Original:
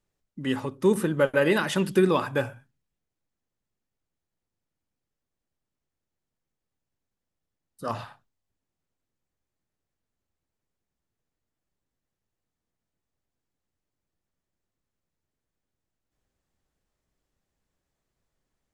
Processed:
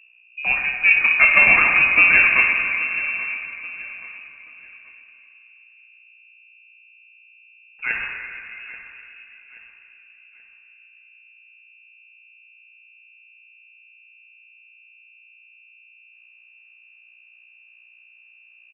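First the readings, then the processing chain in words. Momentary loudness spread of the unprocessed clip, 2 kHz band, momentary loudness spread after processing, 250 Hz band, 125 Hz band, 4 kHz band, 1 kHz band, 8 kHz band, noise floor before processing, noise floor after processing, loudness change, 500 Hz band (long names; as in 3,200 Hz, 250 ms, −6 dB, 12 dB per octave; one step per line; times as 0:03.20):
13 LU, +19.5 dB, 21 LU, −13.0 dB, below −10 dB, +3.5 dB, +5.0 dB, below −30 dB, below −85 dBFS, −53 dBFS, +9.5 dB, −12.0 dB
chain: stylus tracing distortion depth 0.32 ms
mains hum 60 Hz, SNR 25 dB
on a send: repeating echo 830 ms, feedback 36%, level −16.5 dB
on the sum: rectangular room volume 170 cubic metres, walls hard, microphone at 0.39 metres
voice inversion scrambler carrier 2,700 Hz
level +4 dB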